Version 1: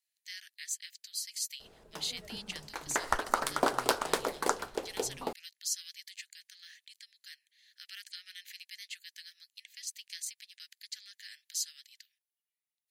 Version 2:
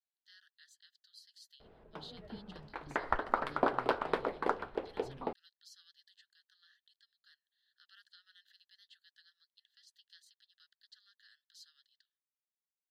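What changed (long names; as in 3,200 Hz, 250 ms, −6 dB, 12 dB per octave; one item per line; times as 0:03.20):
speech: add Butterworth band-reject 2,300 Hz, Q 1.2
master: add high-frequency loss of the air 430 metres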